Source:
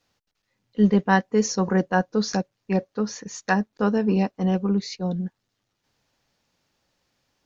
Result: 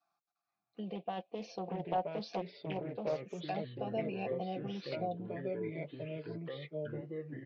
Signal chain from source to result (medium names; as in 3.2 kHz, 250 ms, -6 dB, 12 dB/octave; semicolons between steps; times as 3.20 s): high-pass 84 Hz 24 dB/octave; peaking EQ 3.6 kHz +5 dB 0.77 oct; band-stop 1 kHz, Q 8.8; comb 5.9 ms, depth 57%; peak limiter -16.5 dBFS, peak gain reduction 11.5 dB; vowel filter a; touch-sensitive phaser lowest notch 500 Hz, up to 1.3 kHz, full sweep at -46.5 dBFS; ever faster or slower copies 771 ms, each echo -3 st, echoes 3; 0.95–3.35 s: loudspeaker Doppler distortion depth 0.3 ms; trim +6 dB